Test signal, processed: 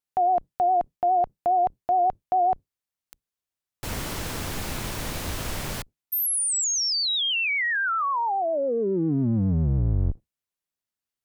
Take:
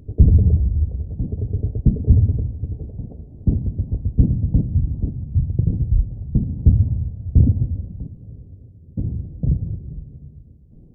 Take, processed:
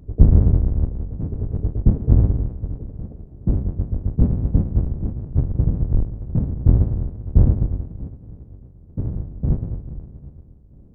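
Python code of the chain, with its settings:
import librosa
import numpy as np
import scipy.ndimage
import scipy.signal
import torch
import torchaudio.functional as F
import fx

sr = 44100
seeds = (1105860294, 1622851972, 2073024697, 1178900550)

y = fx.octave_divider(x, sr, octaves=1, level_db=0.0)
y = fx.vibrato(y, sr, rate_hz=7.3, depth_cents=60.0)
y = F.gain(torch.from_numpy(y), -3.0).numpy()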